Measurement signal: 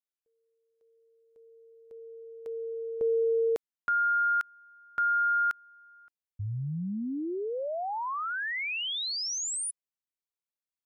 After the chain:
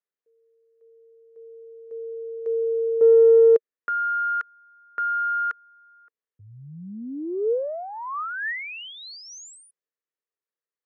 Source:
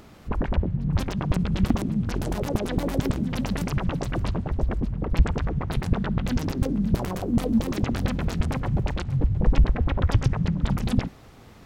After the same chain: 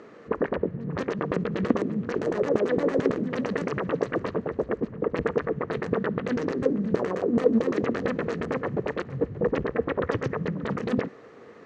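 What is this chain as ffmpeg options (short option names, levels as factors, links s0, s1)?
-af "equalizer=f=440:w=0.73:g=7.5,aeval=exprs='0.631*(cos(1*acos(clip(val(0)/0.631,-1,1)))-cos(1*PI/2))+0.112*(cos(2*acos(clip(val(0)/0.631,-1,1)))-cos(2*PI/2))+0.0112*(cos(7*acos(clip(val(0)/0.631,-1,1)))-cos(7*PI/2))+0.00447*(cos(8*acos(clip(val(0)/0.631,-1,1)))-cos(8*PI/2))':c=same,highpass=190,equalizer=f=460:t=q:w=4:g=9,equalizer=f=800:t=q:w=4:g=-4,equalizer=f=1200:t=q:w=4:g=6,equalizer=f=1800:t=q:w=4:g=9,equalizer=f=3500:t=q:w=4:g=-5,equalizer=f=5100:t=q:w=4:g=-6,lowpass=f=6300:w=0.5412,lowpass=f=6300:w=1.3066,volume=0.708"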